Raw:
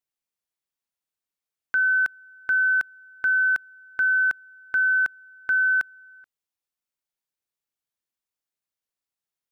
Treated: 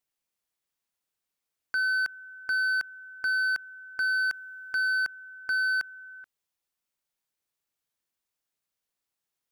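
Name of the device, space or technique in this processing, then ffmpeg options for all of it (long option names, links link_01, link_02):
limiter into clipper: -filter_complex "[0:a]asettb=1/sr,asplit=3[link_01][link_02][link_03];[link_01]atrim=end=4.014[link_04];[link_02]atrim=start=4.01:end=4.87,asetpts=PTS-STARTPTS,afade=type=in:duration=0.004:curve=qsin,afade=type=out:start_time=0.856:duration=0.004:curve=qsin,highshelf=frequency=2000:gain=6[link_05];[link_03]atrim=start=4.866[link_06];[link_04][link_05]acrossfade=duration=0.004:curve1=hsin:curve2=qsin[link_07];[link_07][link_06]acrossfade=duration=0.004:curve1=qsin:curve2=hsin,alimiter=limit=-24dB:level=0:latency=1:release=34,asoftclip=type=hard:threshold=-28dB,volume=3.5dB"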